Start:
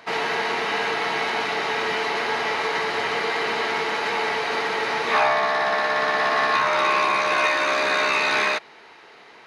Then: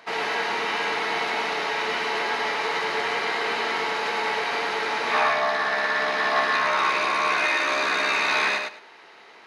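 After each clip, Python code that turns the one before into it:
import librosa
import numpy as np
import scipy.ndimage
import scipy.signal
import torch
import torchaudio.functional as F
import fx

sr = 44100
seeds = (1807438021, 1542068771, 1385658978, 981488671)

y = fx.low_shelf(x, sr, hz=140.0, db=-10.5)
y = fx.echo_feedback(y, sr, ms=104, feedback_pct=19, wet_db=-4.0)
y = F.gain(torch.from_numpy(y), -2.5).numpy()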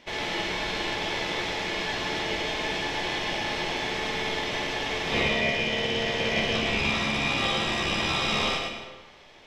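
y = x * np.sin(2.0 * np.pi * 1300.0 * np.arange(len(x)) / sr)
y = fx.room_flutter(y, sr, wall_m=8.6, rt60_s=0.26)
y = fx.rev_freeverb(y, sr, rt60_s=1.2, hf_ratio=0.65, predelay_ms=105, drr_db=8.0)
y = F.gain(torch.from_numpy(y), -1.5).numpy()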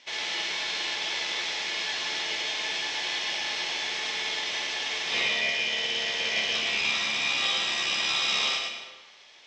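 y = scipy.signal.sosfilt(scipy.signal.butter(4, 6800.0, 'lowpass', fs=sr, output='sos'), x)
y = fx.tilt_eq(y, sr, slope=4.5)
y = F.gain(torch.from_numpy(y), -5.5).numpy()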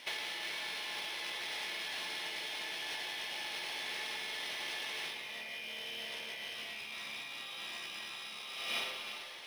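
y = fx.over_compress(x, sr, threshold_db=-38.0, ratio=-1.0)
y = fx.rev_gated(y, sr, seeds[0], gate_ms=420, shape='rising', drr_db=8.0)
y = np.interp(np.arange(len(y)), np.arange(len(y))[::3], y[::3])
y = F.gain(torch.from_numpy(y), -3.5).numpy()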